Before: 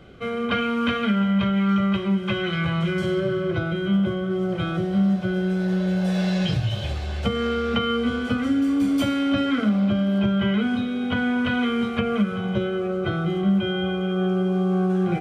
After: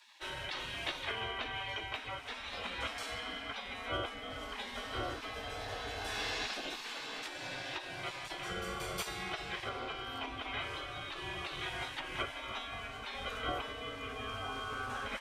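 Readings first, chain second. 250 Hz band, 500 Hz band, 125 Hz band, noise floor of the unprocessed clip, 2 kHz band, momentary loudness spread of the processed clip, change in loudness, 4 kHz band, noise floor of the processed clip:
-30.0 dB, -18.0 dB, -24.5 dB, -28 dBFS, -9.0 dB, 4 LU, -16.5 dB, -7.0 dB, -46 dBFS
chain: frequency shift -16 Hz; spectral gate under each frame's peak -25 dB weak; vocal rider 2 s

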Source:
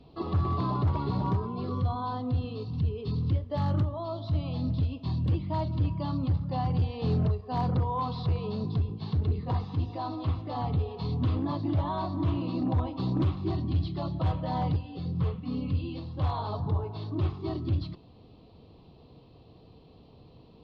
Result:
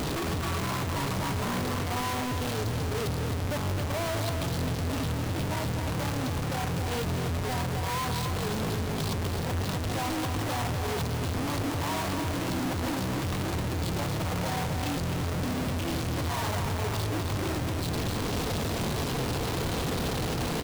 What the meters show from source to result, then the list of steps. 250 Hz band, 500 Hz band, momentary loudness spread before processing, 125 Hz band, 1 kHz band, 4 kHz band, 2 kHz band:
+0.5 dB, +4.0 dB, 4 LU, -2.0 dB, +2.0 dB, +11.5 dB, +16.5 dB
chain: infinite clipping; echo 0.261 s -6.5 dB; gain -1 dB

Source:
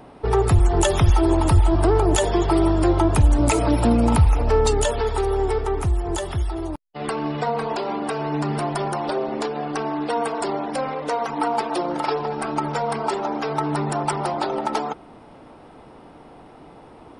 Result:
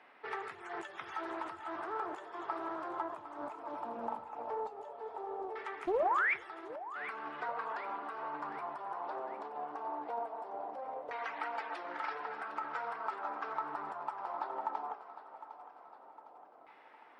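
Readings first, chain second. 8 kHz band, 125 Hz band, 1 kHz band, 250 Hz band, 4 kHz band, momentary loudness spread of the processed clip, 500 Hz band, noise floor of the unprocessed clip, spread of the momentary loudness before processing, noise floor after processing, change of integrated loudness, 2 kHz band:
under -35 dB, under -40 dB, -12.5 dB, -26.5 dB, -24.0 dB, 13 LU, -19.0 dB, -46 dBFS, 9 LU, -58 dBFS, -17.5 dB, -7.5 dB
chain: HPF 200 Hz 12 dB/oct; differentiator; compressor 6:1, threshold -38 dBFS, peak gain reduction 16 dB; LFO low-pass saw down 0.18 Hz 670–2000 Hz; painted sound rise, 5.87–6.34, 330–2500 Hz -32 dBFS; flange 1.3 Hz, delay 8.8 ms, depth 8 ms, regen -67%; split-band echo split 440 Hz, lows 0.148 s, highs 0.757 s, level -13.5 dB; Doppler distortion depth 0.43 ms; gain +6.5 dB

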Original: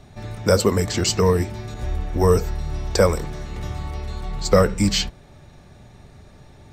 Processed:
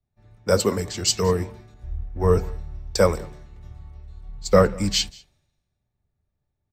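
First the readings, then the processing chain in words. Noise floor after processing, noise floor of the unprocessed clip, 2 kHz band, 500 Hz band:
-79 dBFS, -47 dBFS, -3.0 dB, -1.5 dB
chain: echo 0.197 s -18.5 dB; three-band expander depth 100%; gain -6.5 dB

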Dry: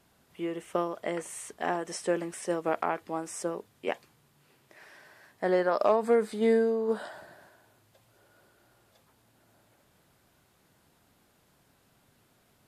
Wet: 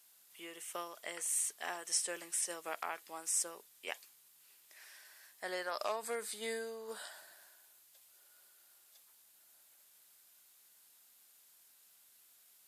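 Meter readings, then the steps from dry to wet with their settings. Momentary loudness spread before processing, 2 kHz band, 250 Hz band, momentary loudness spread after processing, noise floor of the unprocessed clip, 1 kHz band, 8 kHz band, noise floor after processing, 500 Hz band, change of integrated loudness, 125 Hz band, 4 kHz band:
11 LU, -5.5 dB, -21.5 dB, 20 LU, -67 dBFS, -11.0 dB, +7.0 dB, -66 dBFS, -16.5 dB, -8.5 dB, under -20 dB, +1.5 dB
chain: differentiator; gain +6.5 dB

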